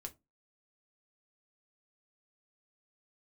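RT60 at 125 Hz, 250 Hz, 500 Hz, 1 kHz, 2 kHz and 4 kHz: 0.30, 0.30, 0.25, 0.20, 0.15, 0.15 s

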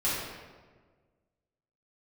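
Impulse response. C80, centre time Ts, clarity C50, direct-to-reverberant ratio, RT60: 1.5 dB, 91 ms, -1.0 dB, -10.0 dB, 1.5 s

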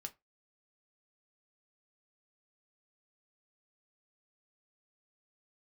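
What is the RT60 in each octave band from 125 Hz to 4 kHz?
0.20, 0.20, 0.20, 0.20, 0.20, 0.15 s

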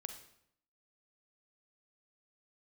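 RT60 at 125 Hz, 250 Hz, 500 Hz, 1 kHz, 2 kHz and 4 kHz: 0.80, 0.80, 0.75, 0.70, 0.65, 0.60 s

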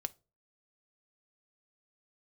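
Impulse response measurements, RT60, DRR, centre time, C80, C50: 0.30 s, 9.5 dB, 1 ms, 31.5 dB, 24.0 dB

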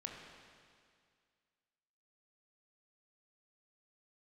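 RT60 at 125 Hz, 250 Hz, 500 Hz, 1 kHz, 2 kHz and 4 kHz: 2.1, 2.1, 2.1, 2.1, 2.1, 2.1 s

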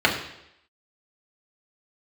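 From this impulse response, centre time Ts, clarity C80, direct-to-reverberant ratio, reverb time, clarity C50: 26 ms, 9.5 dB, -2.5 dB, 0.80 s, 7.5 dB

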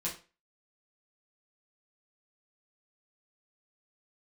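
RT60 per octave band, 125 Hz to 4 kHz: 0.35, 0.30, 0.35, 0.35, 0.35, 0.30 s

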